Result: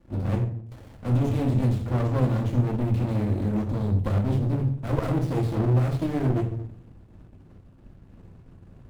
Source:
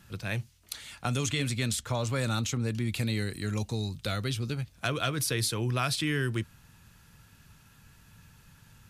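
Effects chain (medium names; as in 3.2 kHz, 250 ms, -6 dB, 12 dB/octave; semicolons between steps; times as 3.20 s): distance through air 210 m; waveshaping leveller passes 3; high-order bell 2.6 kHz -13.5 dB 2.8 oct; band-stop 750 Hz, Q 12; reverberation RT60 0.60 s, pre-delay 3 ms, DRR -2.5 dB; sliding maximum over 33 samples; trim -2.5 dB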